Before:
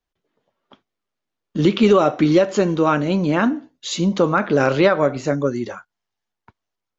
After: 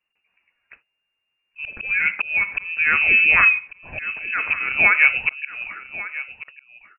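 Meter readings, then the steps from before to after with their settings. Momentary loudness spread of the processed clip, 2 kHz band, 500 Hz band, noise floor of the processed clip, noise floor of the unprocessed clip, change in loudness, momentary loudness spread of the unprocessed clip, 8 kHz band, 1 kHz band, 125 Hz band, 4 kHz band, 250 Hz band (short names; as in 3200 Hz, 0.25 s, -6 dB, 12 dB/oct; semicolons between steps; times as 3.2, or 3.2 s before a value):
18 LU, +12.0 dB, -23.5 dB, -77 dBFS, -83 dBFS, +1.5 dB, 11 LU, n/a, -6.5 dB, under -20 dB, -5.0 dB, -26.5 dB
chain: bell 140 Hz +2 dB 1.7 oct; auto swell 0.495 s; on a send: echo 1.144 s -15.5 dB; on the sum: inverted band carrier 2800 Hz; gain +2.5 dB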